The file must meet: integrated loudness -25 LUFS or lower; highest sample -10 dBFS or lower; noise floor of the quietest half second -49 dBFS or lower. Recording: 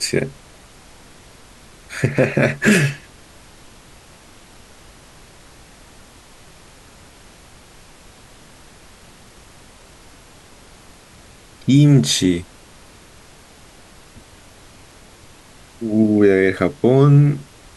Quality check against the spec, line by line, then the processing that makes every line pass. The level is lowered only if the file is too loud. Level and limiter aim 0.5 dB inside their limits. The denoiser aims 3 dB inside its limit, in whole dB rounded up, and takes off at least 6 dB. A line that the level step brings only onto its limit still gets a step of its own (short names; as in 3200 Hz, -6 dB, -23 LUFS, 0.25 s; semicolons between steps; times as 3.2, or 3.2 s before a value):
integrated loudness -16.0 LUFS: fail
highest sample -2.5 dBFS: fail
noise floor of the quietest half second -45 dBFS: fail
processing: gain -9.5 dB